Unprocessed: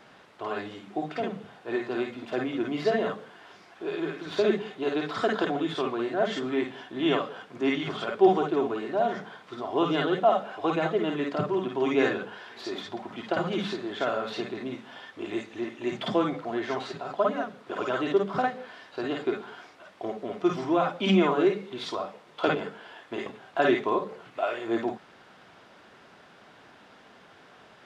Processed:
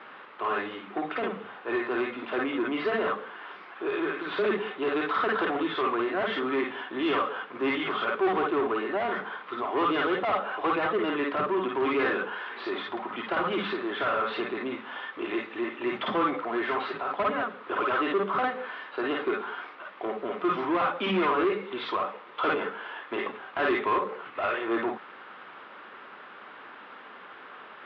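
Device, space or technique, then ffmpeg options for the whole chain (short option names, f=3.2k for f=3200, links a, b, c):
overdrive pedal into a guitar cabinet: -filter_complex "[0:a]asplit=2[a][b];[b]highpass=f=720:p=1,volume=25dB,asoftclip=type=tanh:threshold=-8dB[c];[a][c]amix=inputs=2:normalize=0,lowpass=f=2.2k:p=1,volume=-6dB,highpass=100,equalizer=f=150:t=q:w=4:g=-7,equalizer=f=680:t=q:w=4:g=-7,equalizer=f=1.2k:t=q:w=4:g=5,lowpass=f=3.4k:w=0.5412,lowpass=f=3.4k:w=1.3066,volume=-8.5dB"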